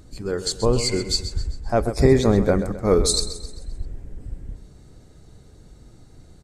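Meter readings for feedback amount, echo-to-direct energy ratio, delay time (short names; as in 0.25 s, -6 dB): 45%, -11.0 dB, 0.131 s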